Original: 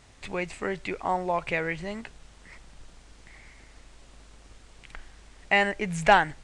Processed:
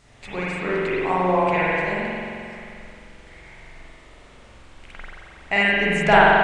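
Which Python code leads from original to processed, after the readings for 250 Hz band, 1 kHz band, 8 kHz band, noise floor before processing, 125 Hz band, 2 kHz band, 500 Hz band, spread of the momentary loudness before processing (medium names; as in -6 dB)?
+8.5 dB, +6.5 dB, no reading, -54 dBFS, +7.5 dB, +7.5 dB, +8.0 dB, 15 LU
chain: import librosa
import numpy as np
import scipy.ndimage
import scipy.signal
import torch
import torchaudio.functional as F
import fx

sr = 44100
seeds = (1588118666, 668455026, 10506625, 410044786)

y = fx.rev_spring(x, sr, rt60_s=2.5, pass_ms=(44,), chirp_ms=75, drr_db=-8.5)
y = y * librosa.db_to_amplitude(-1.0)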